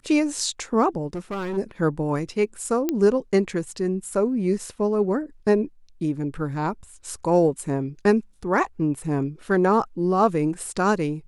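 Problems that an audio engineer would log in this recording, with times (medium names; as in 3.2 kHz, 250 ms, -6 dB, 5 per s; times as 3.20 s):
1.14–1.58 s: clipped -25.5 dBFS
2.89 s: pop -10 dBFS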